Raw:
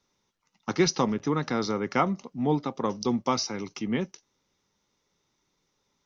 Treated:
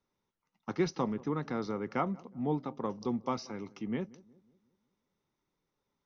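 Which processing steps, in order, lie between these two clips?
low-pass filter 1,700 Hz 6 dB per octave
feedback echo with a low-pass in the loop 182 ms, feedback 48%, low-pass 910 Hz, level −21 dB
level −6.5 dB

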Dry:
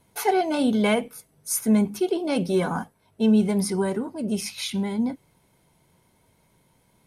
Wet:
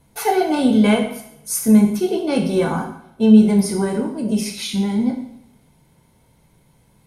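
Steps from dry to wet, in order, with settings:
low-shelf EQ 140 Hz +9 dB
coupled-rooms reverb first 0.67 s, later 1.7 s, from −23 dB, DRR 1.5 dB
level +1.5 dB

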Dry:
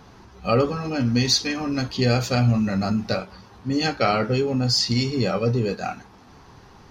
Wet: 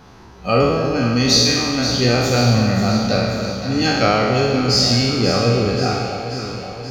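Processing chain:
peak hold with a decay on every bin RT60 1.51 s
on a send: delay that swaps between a low-pass and a high-pass 266 ms, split 990 Hz, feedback 78%, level −7 dB
on the sum: level +1.5 dB

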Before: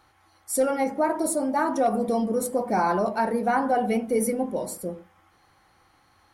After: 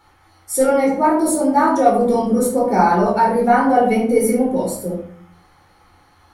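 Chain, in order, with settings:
rectangular room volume 480 cubic metres, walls furnished, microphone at 4.2 metres
level +1 dB

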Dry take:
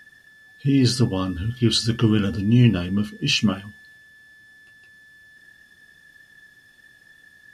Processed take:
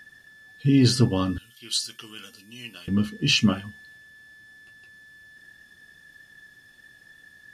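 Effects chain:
0:01.38–0:02.88: first difference

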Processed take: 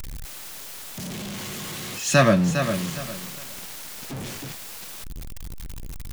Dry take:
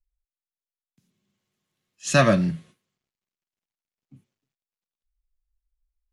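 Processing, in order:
converter with a step at zero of −27 dBFS
feedback echo at a low word length 406 ms, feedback 35%, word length 6 bits, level −7.5 dB

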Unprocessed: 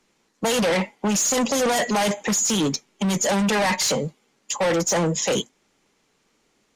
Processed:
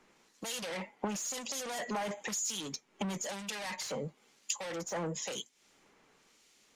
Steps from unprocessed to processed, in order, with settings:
low-shelf EQ 430 Hz −6 dB
downward compressor 16 to 1, threshold −37 dBFS, peak gain reduction 17.5 dB
two-band tremolo in antiphase 1 Hz, depth 70%, crossover 2,300 Hz
level +5 dB

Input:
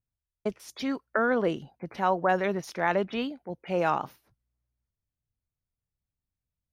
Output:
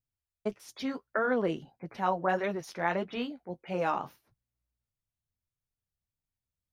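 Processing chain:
flanger 1.6 Hz, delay 6.1 ms, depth 6.8 ms, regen −34%

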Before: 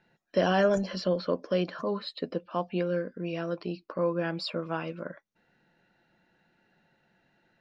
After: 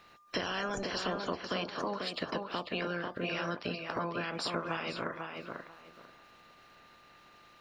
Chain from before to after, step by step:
ceiling on every frequency bin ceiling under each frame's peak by 20 dB
in parallel at +2 dB: brickwall limiter −20.5 dBFS, peak gain reduction 9.5 dB
on the sum: downward compressor 5 to 1, threshold −34 dBFS, peak gain reduction 17 dB
tape delay 493 ms, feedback 24%, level −3 dB, low-pass 2,400 Hz
steady tone 1,200 Hz −60 dBFS

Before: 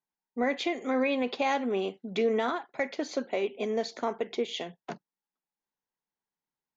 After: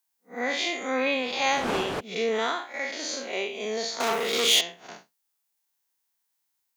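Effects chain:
spectrum smeared in time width 129 ms
0:00.97–0:01.99: wind on the microphone 530 Hz −39 dBFS
0:04.00–0:04.61: leveller curve on the samples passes 3
spectral tilt +4 dB per octave
level +6 dB

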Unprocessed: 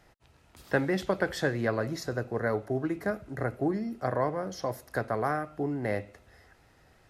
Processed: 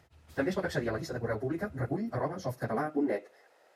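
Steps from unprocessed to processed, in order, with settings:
high-pass filter sweep 78 Hz → 540 Hz, 0:04.23–0:06.47
time stretch by phase vocoder 0.53×

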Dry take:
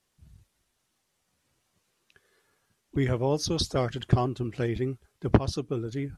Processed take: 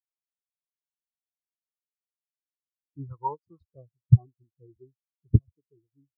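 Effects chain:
0:03.10–0:03.69: flat-topped bell 1,200 Hz +15.5 dB 1.1 octaves
harmonic generator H 5 −27 dB, 7 −23 dB, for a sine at −3 dBFS
every bin expanded away from the loudest bin 4 to 1

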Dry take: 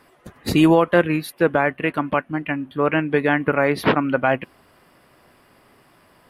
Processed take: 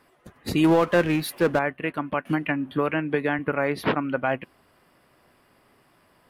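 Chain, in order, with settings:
0:00.64–0:01.59: power curve on the samples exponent 0.7
0:02.25–0:03.39: multiband upward and downward compressor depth 100%
level −6 dB

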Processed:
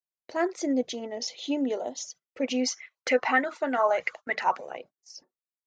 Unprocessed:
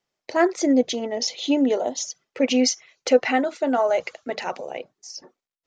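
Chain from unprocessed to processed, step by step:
noise gate −40 dBFS, range −19 dB
0:02.67–0:04.76: auto-filter bell 3.3 Hz 940–2,100 Hz +18 dB
level −8 dB

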